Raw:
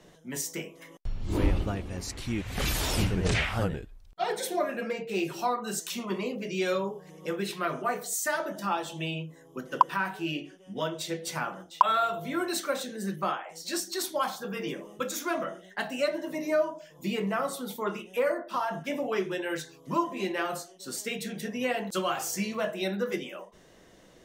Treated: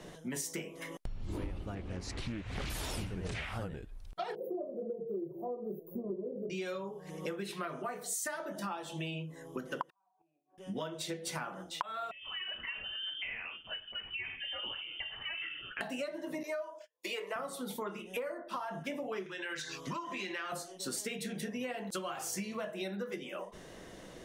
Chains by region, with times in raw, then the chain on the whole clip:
0:01.75–0:02.70: high-frequency loss of the air 69 metres + highs frequency-modulated by the lows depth 0.4 ms
0:04.35–0:06.50: inverse Chebyshev band-stop filter 1,700–8,300 Hz, stop band 60 dB + parametric band 360 Hz +8 dB 0.37 octaves + comb filter 1.8 ms, depth 40%
0:09.90–0:10.58: gate with flip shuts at −31 dBFS, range −27 dB + formant resonators in series a
0:12.11–0:15.81: downward compressor 2.5 to 1, threshold −45 dBFS + voice inversion scrambler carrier 3,300 Hz
0:16.43–0:17.36: high-pass filter 460 Hz 24 dB per octave + notch filter 770 Hz, Q 5 + noise gate −49 dBFS, range −38 dB
0:19.26–0:20.52: flat-topped bell 2,800 Hz +11 dB 3 octaves + downward compressor 2.5 to 1, threshold −40 dBFS
whole clip: high-shelf EQ 7,000 Hz −6.5 dB; downward compressor 10 to 1, threshold −42 dBFS; parametric band 10,000 Hz +7 dB 0.42 octaves; level +6 dB

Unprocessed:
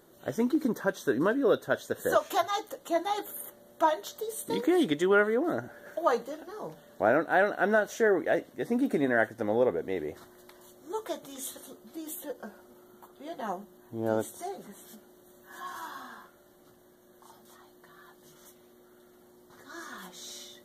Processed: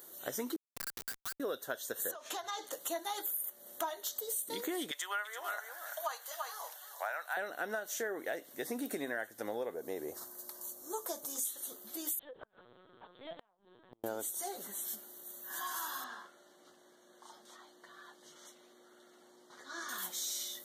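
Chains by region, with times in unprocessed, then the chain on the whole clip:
0:00.56–0:01.40: Butterworth high-pass 1,200 Hz 96 dB per octave + high-shelf EQ 11,000 Hz −9.5 dB + comparator with hysteresis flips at −38 dBFS
0:02.11–0:02.73: downward compressor 8 to 1, threshold −34 dBFS + high-frequency loss of the air 62 metres
0:04.91–0:07.37: high-pass filter 770 Hz 24 dB per octave + single-tap delay 337 ms −10.5 dB
0:09.74–0:11.45: flat-topped bell 2,600 Hz −10 dB 1.3 octaves + notch filter 1,400 Hz, Q 11
0:12.19–0:14.04: linear-prediction vocoder at 8 kHz pitch kept + downward compressor, threshold −36 dBFS + gate with flip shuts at −32 dBFS, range −31 dB
0:16.04–0:19.89: high-pass filter 160 Hz + high-frequency loss of the air 110 metres
whole clip: RIAA equalisation recording; downward compressor 6 to 1, threshold −35 dBFS

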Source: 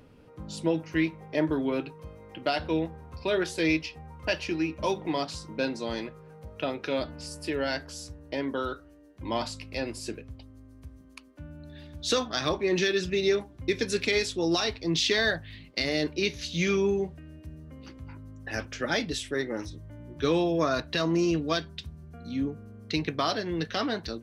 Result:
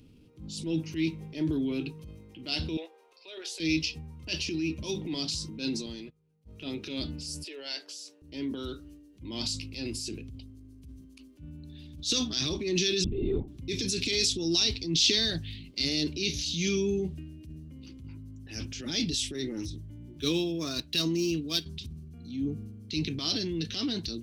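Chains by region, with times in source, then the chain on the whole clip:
0:02.77–0:03.60: Butterworth high-pass 470 Hz + high-shelf EQ 5,300 Hz −8.5 dB + downward compressor, threshold −30 dBFS
0:05.86–0:06.47: noise gate −40 dBFS, range −26 dB + downward compressor 2 to 1, threshold −42 dBFS
0:07.44–0:08.22: high-pass filter 440 Hz 24 dB per octave + high-shelf EQ 6,400 Hz −9.5 dB
0:13.04–0:13.48: Savitzky-Golay smoothing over 65 samples + linear-prediction vocoder at 8 kHz whisper
0:20.06–0:21.66: running median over 5 samples + low-shelf EQ 370 Hz −5.5 dB + transient designer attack +8 dB, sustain −7 dB
whole clip: dynamic equaliser 5,400 Hz, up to +7 dB, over −46 dBFS, Q 0.99; transient designer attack −8 dB, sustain +6 dB; flat-topped bell 980 Hz −15.5 dB 2.3 octaves

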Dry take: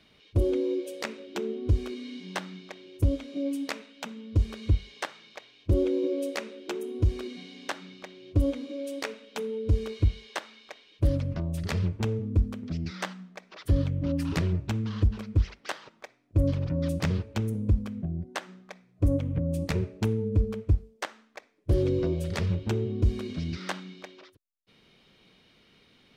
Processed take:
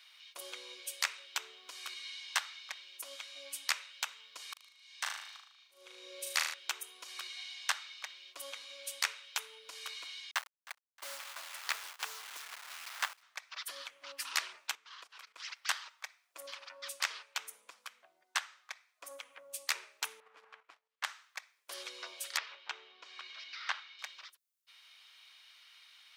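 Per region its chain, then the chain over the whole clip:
0:04.53–0:06.54: volume swells 678 ms + flutter between parallel walls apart 6.5 metres, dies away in 0.66 s
0:10.31–0:13.23: hold until the input has moved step −36.5 dBFS + high-shelf EQ 5,200 Hz −8.5 dB + repeating echo 312 ms, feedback 40%, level −21 dB
0:14.75–0:15.40: high-pass filter 47 Hz + bass and treble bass −11 dB, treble −3 dB + output level in coarse steps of 16 dB
0:16.46–0:19.11: high-pass filter 250 Hz 6 dB per octave + high-shelf EQ 8,500 Hz −5 dB
0:20.20–0:21.04: mu-law and A-law mismatch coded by A + low-pass filter 2,400 Hz + output level in coarse steps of 10 dB
0:22.37–0:23.99: high-pass filter 340 Hz 6 dB per octave + high-frequency loss of the air 190 metres
whole clip: high-pass filter 1,000 Hz 24 dB per octave; high-shelf EQ 4,400 Hz +9 dB; level +1 dB

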